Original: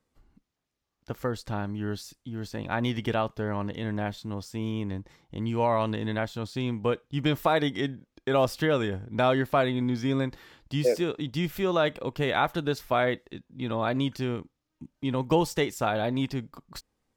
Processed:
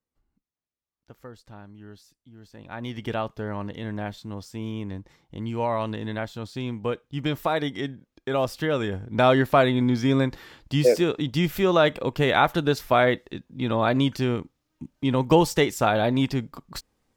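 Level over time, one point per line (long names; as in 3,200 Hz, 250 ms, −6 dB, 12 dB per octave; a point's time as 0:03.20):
0:02.45 −13 dB
0:03.13 −1 dB
0:08.61 −1 dB
0:09.31 +5.5 dB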